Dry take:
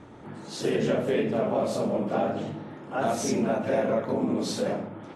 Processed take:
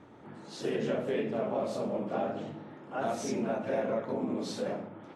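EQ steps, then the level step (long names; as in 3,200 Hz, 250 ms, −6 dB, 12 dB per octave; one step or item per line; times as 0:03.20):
low-shelf EQ 87 Hz −9.5 dB
high-shelf EQ 7,100 Hz −8 dB
−5.5 dB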